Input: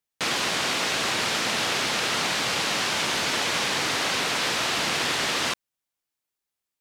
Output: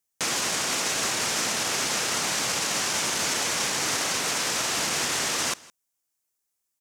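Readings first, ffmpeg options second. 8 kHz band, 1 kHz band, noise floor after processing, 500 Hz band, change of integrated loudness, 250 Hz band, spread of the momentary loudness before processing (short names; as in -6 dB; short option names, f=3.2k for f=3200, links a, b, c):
+5.0 dB, -2.5 dB, -80 dBFS, -2.5 dB, -0.5 dB, -2.5 dB, 1 LU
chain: -af "alimiter=limit=-19dB:level=0:latency=1:release=21,highshelf=f=5k:t=q:w=1.5:g=6.5,aecho=1:1:163:0.075"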